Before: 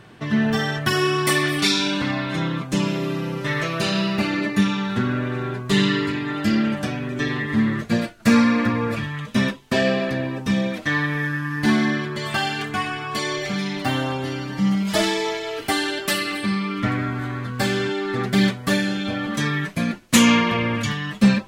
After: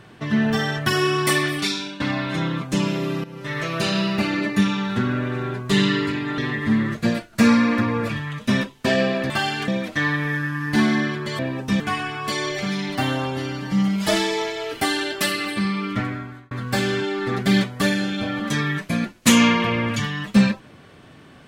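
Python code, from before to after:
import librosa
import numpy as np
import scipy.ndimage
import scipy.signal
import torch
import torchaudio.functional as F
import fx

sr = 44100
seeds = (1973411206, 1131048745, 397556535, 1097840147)

y = fx.edit(x, sr, fx.fade_out_to(start_s=1.35, length_s=0.65, floor_db=-15.5),
    fx.fade_in_from(start_s=3.24, length_s=0.53, floor_db=-15.0),
    fx.cut(start_s=6.38, length_s=0.87),
    fx.swap(start_s=10.17, length_s=0.41, other_s=12.29, other_length_s=0.38),
    fx.fade_out_span(start_s=16.73, length_s=0.65), tone=tone)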